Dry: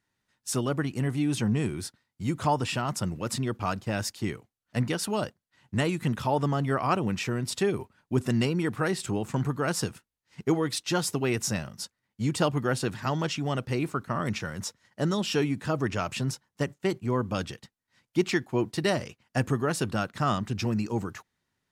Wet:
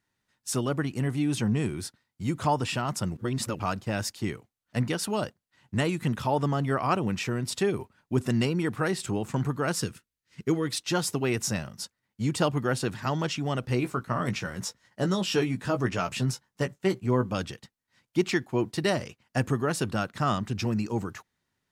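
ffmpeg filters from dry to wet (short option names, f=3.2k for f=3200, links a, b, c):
-filter_complex "[0:a]asettb=1/sr,asplit=3[a][b][c];[a]atrim=end=9.754[d];[b]atrim=start=9.75:end=10.67,asetpts=PTS-STARTPTS,afade=t=in:d=0.004:c=qsin,afade=t=out:st=0.916:d=0.004:c=qsin,equalizer=f=790:t=o:w=0.73:g=-10[e];[c]atrim=start=10.666[f];[d][e]acrossfade=d=0.004:c1=hsin:c2=qsin[g];[g][f]acrossfade=d=0.004:c1=qsin:c2=hsin,asettb=1/sr,asplit=3[h][i][j];[h]atrim=end=13.624[k];[i]atrim=start=13.62:end=17.33,asetpts=PTS-STARTPTS,afade=t=in:d=0.004:c=qsin,afade=t=out:st=3.706:d=0.004:c=qsin,asplit=2[l][m];[m]adelay=16,volume=-7dB[n];[l][n]amix=inputs=2:normalize=0,atrim=end_sample=163611[o];[j]atrim=start=17.326[p];[k][o]acrossfade=d=0.004:c1=hsin:c2=qsin[q];[q][p]acrossfade=d=0.004:c1=qsin:c2=hsin,asplit=3[r][s][t];[r]atrim=end=3.172[u];[s]atrim=start=3.168:end=3.592,asetpts=PTS-STARTPTS,areverse[v];[t]atrim=start=3.588[w];[u][v]acrossfade=d=0.004:c1=hsin:c2=hsin[x];[x][w]acrossfade=d=0.004:c1=hsin:c2=hsin"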